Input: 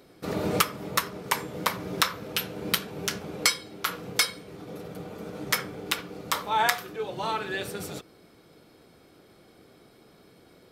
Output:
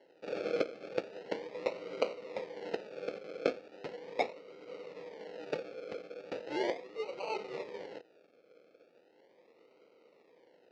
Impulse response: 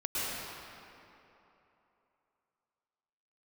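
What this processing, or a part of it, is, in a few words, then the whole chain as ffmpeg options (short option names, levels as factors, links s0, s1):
circuit-bent sampling toy: -af "acrusher=samples=36:mix=1:aa=0.000001:lfo=1:lforange=21.6:lforate=0.38,highpass=460,equalizer=f=500:t=q:w=4:g=9,equalizer=f=730:t=q:w=4:g=-5,equalizer=f=1100:t=q:w=4:g=-9,equalizer=f=1600:t=q:w=4:g=-7,equalizer=f=3400:t=q:w=4:g=-8,lowpass=f=4300:w=0.5412,lowpass=f=4300:w=1.3066,volume=0.531"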